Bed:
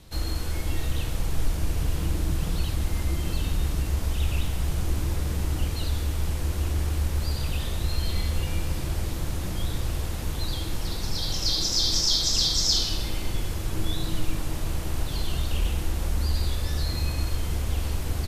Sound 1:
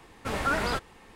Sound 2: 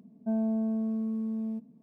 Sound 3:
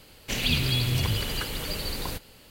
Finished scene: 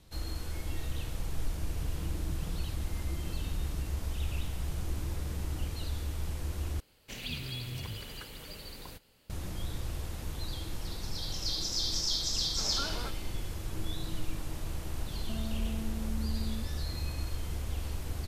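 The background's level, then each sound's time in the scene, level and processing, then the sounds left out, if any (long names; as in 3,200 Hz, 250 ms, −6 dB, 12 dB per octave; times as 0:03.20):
bed −8.5 dB
0:06.80: overwrite with 3 −13.5 dB
0:12.32: mix in 1 −12.5 dB + notch filter 1,900 Hz, Q 6.9
0:15.03: mix in 2 −2 dB + downward compressor, threshold −36 dBFS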